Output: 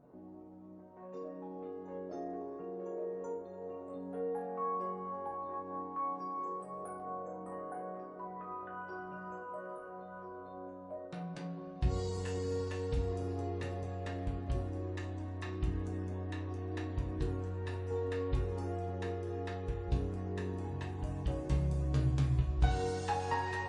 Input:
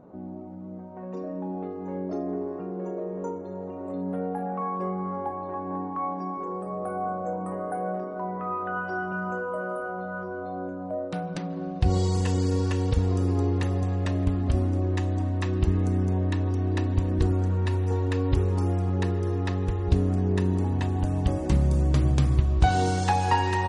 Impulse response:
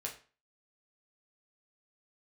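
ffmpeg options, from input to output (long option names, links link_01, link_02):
-filter_complex "[0:a]asetnsamples=nb_out_samples=441:pad=0,asendcmd='5.99 highshelf g 12;7 highshelf g -2.5',highshelf=frequency=5500:gain=6.5[link_01];[1:a]atrim=start_sample=2205[link_02];[link_01][link_02]afir=irnorm=-1:irlink=0,volume=-9dB"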